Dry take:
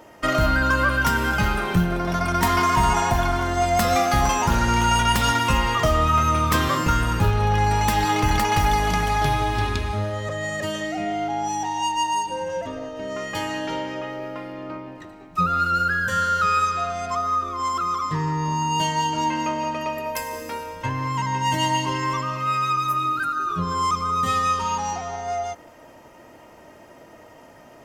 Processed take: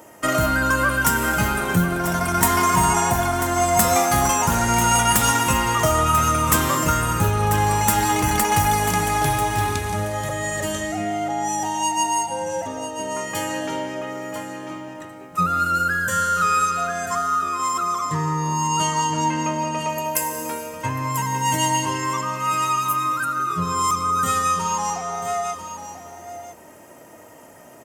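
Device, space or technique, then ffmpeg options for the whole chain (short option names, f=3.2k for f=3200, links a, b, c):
budget condenser microphone: -filter_complex "[0:a]asettb=1/sr,asplit=3[a][b][c];[a]atrim=end=18.674[d];[b]atrim=start=18.67:end=19.89,asetpts=PTS-STARTPTS,afade=t=in:d=0.004:c=qsin,afade=t=out:st=1.216:d=0.004:c=qsin,lowpass=8.7k[e];[c]atrim=start=19.886[f];[d][e]acrossfade=d=0.004:c1=hsin:c2=qsin[g];[g][f]acrossfade=d=0.004:c1=qsin:c2=hsin,highpass=81,highshelf=f=6.1k:t=q:w=1.5:g=9.5,aecho=1:1:991:0.299,volume=1dB"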